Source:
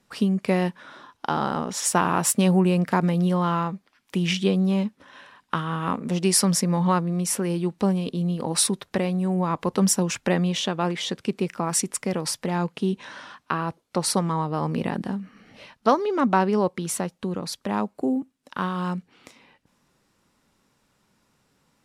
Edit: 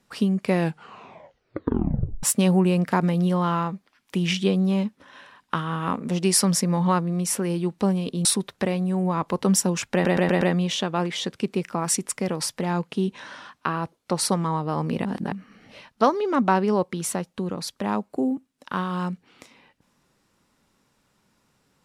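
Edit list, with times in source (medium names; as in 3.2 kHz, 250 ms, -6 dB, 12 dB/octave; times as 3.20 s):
0.52 s: tape stop 1.71 s
8.25–8.58 s: delete
10.26 s: stutter 0.12 s, 5 plays
14.90–15.17 s: reverse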